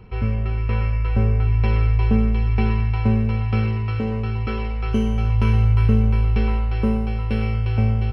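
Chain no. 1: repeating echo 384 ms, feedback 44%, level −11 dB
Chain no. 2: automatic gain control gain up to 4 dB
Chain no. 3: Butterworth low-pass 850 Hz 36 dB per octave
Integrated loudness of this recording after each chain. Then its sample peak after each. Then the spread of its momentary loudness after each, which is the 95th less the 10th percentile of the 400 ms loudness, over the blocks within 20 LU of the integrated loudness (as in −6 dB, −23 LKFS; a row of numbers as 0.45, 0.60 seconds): −19.5, −18.0, −21.0 LKFS; −4.5, −3.0, −5.5 dBFS; 7, 6, 7 LU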